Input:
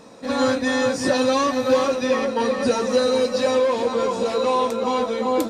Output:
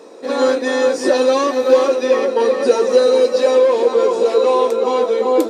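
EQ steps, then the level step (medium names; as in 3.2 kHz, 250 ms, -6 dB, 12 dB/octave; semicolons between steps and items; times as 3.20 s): resonant high-pass 380 Hz, resonance Q 4; +1.0 dB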